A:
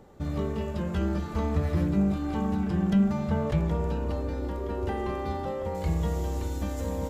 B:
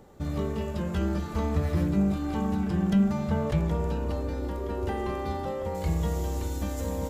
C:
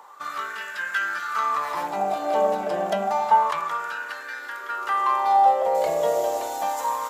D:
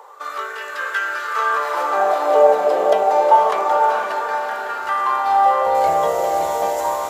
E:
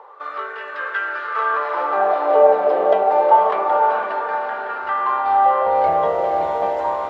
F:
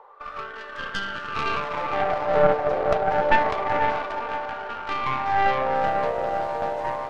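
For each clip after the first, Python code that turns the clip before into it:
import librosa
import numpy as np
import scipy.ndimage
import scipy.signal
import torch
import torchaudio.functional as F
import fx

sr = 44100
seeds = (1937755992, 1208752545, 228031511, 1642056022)

y1 = fx.high_shelf(x, sr, hz=5800.0, db=5.5)
y2 = fx.filter_lfo_highpass(y1, sr, shape='sine', hz=0.29, low_hz=600.0, high_hz=1600.0, q=7.6)
y2 = y2 * 10.0 ** (6.0 / 20.0)
y3 = fx.filter_sweep_highpass(y2, sr, from_hz=460.0, to_hz=82.0, start_s=3.44, end_s=4.89, q=4.0)
y3 = fx.echo_diffused(y3, sr, ms=492, feedback_pct=48, wet_db=-3.5)
y3 = y3 * 10.0 ** (2.0 / 20.0)
y4 = fx.air_absorb(y3, sr, metres=350.0)
y4 = y4 * 10.0 ** (1.0 / 20.0)
y5 = fx.tracing_dist(y4, sr, depth_ms=0.31)
y5 = y5 * 10.0 ** (-6.5 / 20.0)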